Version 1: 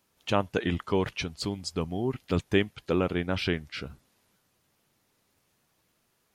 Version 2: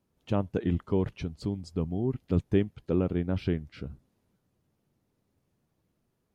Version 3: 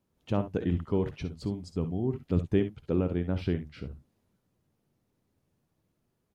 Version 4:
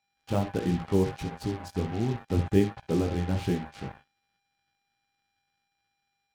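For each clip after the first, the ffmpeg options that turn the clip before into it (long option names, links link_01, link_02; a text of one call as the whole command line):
ffmpeg -i in.wav -af "tiltshelf=frequency=660:gain=9,volume=-5.5dB" out.wav
ffmpeg -i in.wav -af "aecho=1:1:55|68:0.224|0.211,volume=-1dB" out.wav
ffmpeg -i in.wav -af "flanger=delay=16.5:depth=4.9:speed=1.4,aeval=exprs='val(0)+0.00447*sin(2*PI*800*n/s)':channel_layout=same,acrusher=bits=6:mix=0:aa=0.5,volume=4.5dB" out.wav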